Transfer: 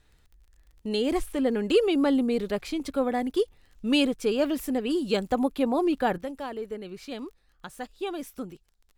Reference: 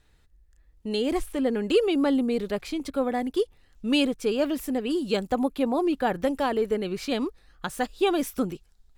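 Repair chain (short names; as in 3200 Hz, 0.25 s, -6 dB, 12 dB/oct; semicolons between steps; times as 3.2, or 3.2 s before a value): de-click; gain correction +9.5 dB, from 6.18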